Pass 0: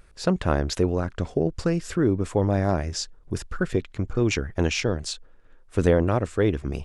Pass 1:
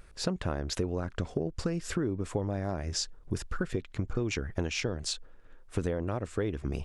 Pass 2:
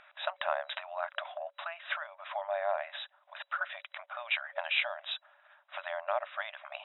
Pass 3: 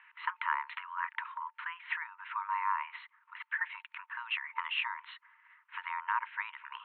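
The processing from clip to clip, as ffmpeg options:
-af "acompressor=threshold=0.0447:ratio=10"
-af "afftfilt=real='re*between(b*sr/4096,560,3900)':imag='im*between(b*sr/4096,560,3900)':win_size=4096:overlap=0.75,volume=2.11"
-af "highpass=f=460:t=q:w=0.5412,highpass=f=460:t=q:w=1.307,lowpass=f=2400:t=q:w=0.5176,lowpass=f=2400:t=q:w=0.7071,lowpass=f=2400:t=q:w=1.932,afreqshift=340"

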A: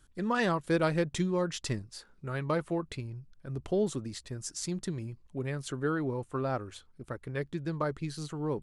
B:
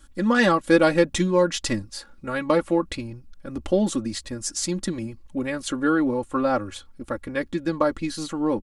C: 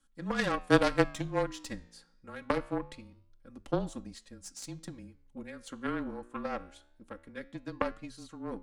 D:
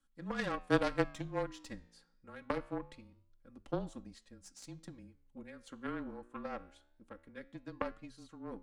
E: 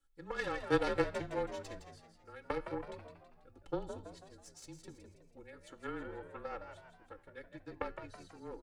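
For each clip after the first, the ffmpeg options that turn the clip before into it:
-af "aecho=1:1:3.6:0.84,volume=2.51"
-af "aeval=exprs='0.596*(cos(1*acos(clip(val(0)/0.596,-1,1)))-cos(1*PI/2))+0.0668*(cos(2*acos(clip(val(0)/0.596,-1,1)))-cos(2*PI/2))+0.168*(cos(3*acos(clip(val(0)/0.596,-1,1)))-cos(3*PI/2))':c=same,flanger=delay=9.2:depth=8.9:regen=-88:speed=0.25:shape=triangular,afreqshift=-26,volume=1.33"
-af "highshelf=f=5200:g=-5.5,volume=0.501"
-filter_complex "[0:a]aecho=1:1:2.3:0.75,asplit=2[s0][s1];[s1]asplit=5[s2][s3][s4][s5][s6];[s2]adelay=163,afreqshift=74,volume=0.376[s7];[s3]adelay=326,afreqshift=148,volume=0.166[s8];[s4]adelay=489,afreqshift=222,volume=0.0724[s9];[s5]adelay=652,afreqshift=296,volume=0.032[s10];[s6]adelay=815,afreqshift=370,volume=0.0141[s11];[s7][s8][s9][s10][s11]amix=inputs=5:normalize=0[s12];[s0][s12]amix=inputs=2:normalize=0,volume=0.708"

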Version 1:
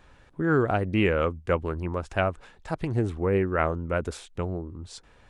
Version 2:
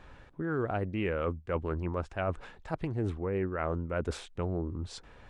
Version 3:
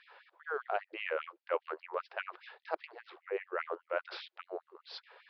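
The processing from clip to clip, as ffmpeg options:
-af "lowpass=f=3400:p=1,areverse,acompressor=threshold=0.0251:ratio=6,areverse,volume=1.41"
-af "aresample=11025,aresample=44100,bandreject=f=60:t=h:w=6,bandreject=f=120:t=h:w=6,bandreject=f=180:t=h:w=6,bandreject=f=240:t=h:w=6,bandreject=f=300:t=h:w=6,bandreject=f=360:t=h:w=6,afftfilt=real='re*gte(b*sr/1024,330*pow(2000/330,0.5+0.5*sin(2*PI*5*pts/sr)))':imag='im*gte(b*sr/1024,330*pow(2000/330,0.5+0.5*sin(2*PI*5*pts/sr)))':win_size=1024:overlap=0.75,volume=1.12"

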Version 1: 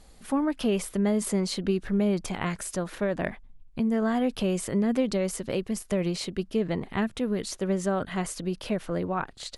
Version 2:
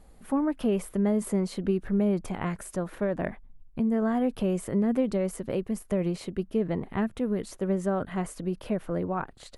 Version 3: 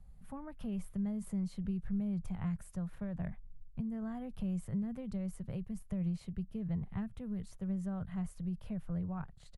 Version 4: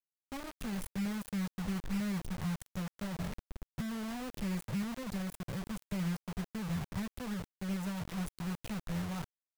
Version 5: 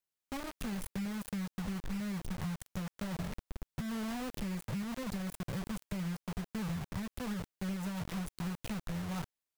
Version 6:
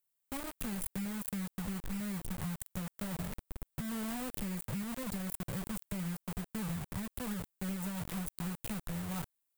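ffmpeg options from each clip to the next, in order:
-af "equalizer=f=4900:w=0.54:g=-12"
-filter_complex "[0:a]firequalizer=gain_entry='entry(160,0);entry(290,-22);entry(730,-15)':delay=0.05:min_phase=1,acrossover=split=180|3000[s0][s1][s2];[s1]acompressor=threshold=0.00794:ratio=2[s3];[s0][s3][s2]amix=inputs=3:normalize=0"
-af "acrusher=bits=6:mix=0:aa=0.000001"
-af "acompressor=threshold=0.0126:ratio=6,volume=1.5"
-af "aexciter=amount=3.3:drive=2.7:freq=7700,volume=0.891"

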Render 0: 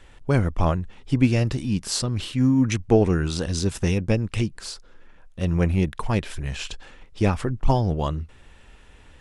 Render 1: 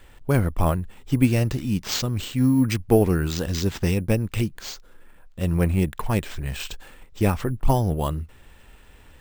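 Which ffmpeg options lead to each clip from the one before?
-af "acrusher=samples=4:mix=1:aa=0.000001"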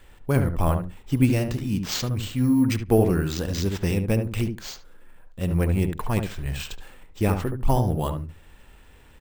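-filter_complex "[0:a]asplit=2[s0][s1];[s1]adelay=72,lowpass=f=1200:p=1,volume=0.562,asplit=2[s2][s3];[s3]adelay=72,lowpass=f=1200:p=1,volume=0.16,asplit=2[s4][s5];[s5]adelay=72,lowpass=f=1200:p=1,volume=0.16[s6];[s0][s2][s4][s6]amix=inputs=4:normalize=0,volume=0.794"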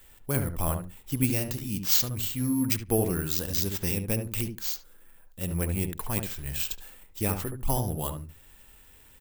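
-af "aemphasis=mode=production:type=75fm,volume=0.473"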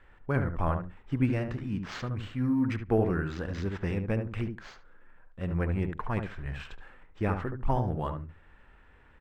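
-af "lowpass=f=1600:t=q:w=1.7"

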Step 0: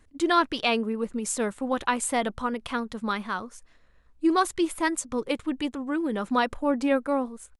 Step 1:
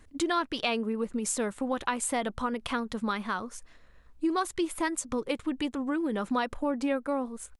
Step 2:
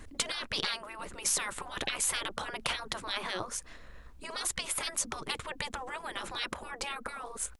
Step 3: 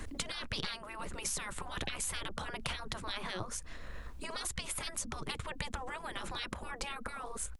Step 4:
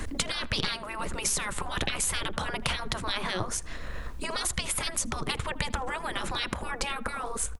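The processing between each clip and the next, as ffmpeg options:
-af "acompressor=threshold=0.0224:ratio=2.5,volume=1.5"
-af "afftfilt=real='re*lt(hypot(re,im),0.0501)':imag='im*lt(hypot(re,im),0.0501)':win_size=1024:overlap=0.75,volume=2.51"
-filter_complex "[0:a]acrossover=split=190[s0][s1];[s1]acompressor=threshold=0.00251:ratio=2[s2];[s0][s2]amix=inputs=2:normalize=0,volume=2"
-filter_complex "[0:a]asplit=2[s0][s1];[s1]adelay=80,lowpass=f=1400:p=1,volume=0.158,asplit=2[s2][s3];[s3]adelay=80,lowpass=f=1400:p=1,volume=0.49,asplit=2[s4][s5];[s5]adelay=80,lowpass=f=1400:p=1,volume=0.49,asplit=2[s6][s7];[s7]adelay=80,lowpass=f=1400:p=1,volume=0.49[s8];[s0][s2][s4][s6][s8]amix=inputs=5:normalize=0,volume=2.66"

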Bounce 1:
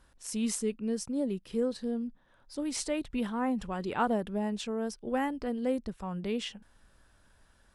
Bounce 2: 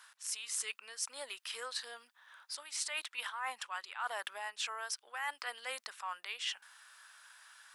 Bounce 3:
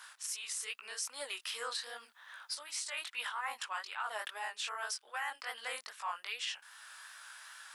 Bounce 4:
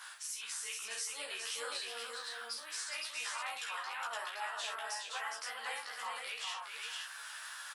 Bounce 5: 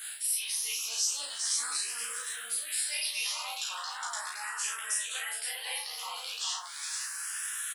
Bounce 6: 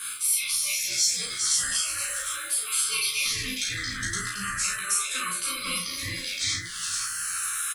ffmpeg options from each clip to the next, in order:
-af "highpass=f=1100:w=0.5412,highpass=f=1100:w=1.3066,areverse,acompressor=threshold=0.00447:ratio=10,areverse,volume=3.76"
-af "lowshelf=f=180:g=-6.5,flanger=delay=16.5:depth=7.5:speed=2.5,alimiter=level_in=4.47:limit=0.0631:level=0:latency=1:release=427,volume=0.224,volume=2.99"
-filter_complex "[0:a]acompressor=threshold=0.00355:ratio=2,asplit=2[s0][s1];[s1]adelay=13,volume=0.794[s2];[s0][s2]amix=inputs=2:normalize=0,asplit=2[s3][s4];[s4]aecho=0:1:49|413|517|855:0.531|0.562|0.708|0.126[s5];[s3][s5]amix=inputs=2:normalize=0,volume=1.19"
-filter_complex "[0:a]crystalizer=i=5.5:c=0,asplit=2[s0][s1];[s1]adelay=35,volume=0.668[s2];[s0][s2]amix=inputs=2:normalize=0,asplit=2[s3][s4];[s4]afreqshift=0.38[s5];[s3][s5]amix=inputs=2:normalize=1,volume=0.841"
-af "afftfilt=real='real(if(between(b,1,1008),(2*floor((b-1)/48)+1)*48-b,b),0)':imag='imag(if(between(b,1,1008),(2*floor((b-1)/48)+1)*48-b,b),0)*if(between(b,1,1008),-1,1)':win_size=2048:overlap=0.75,volume=2.11"

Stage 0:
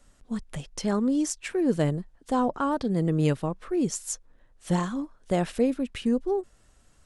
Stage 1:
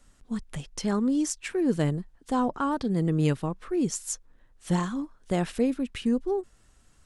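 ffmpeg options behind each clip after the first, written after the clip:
-af "equalizer=f=590:t=o:w=0.66:g=-4.5"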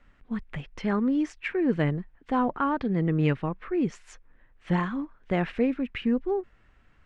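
-af "lowpass=f=2200:t=q:w=2"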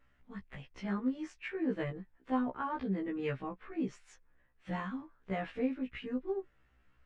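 -af "afftfilt=real='re*1.73*eq(mod(b,3),0)':imag='im*1.73*eq(mod(b,3),0)':win_size=2048:overlap=0.75,volume=0.473"

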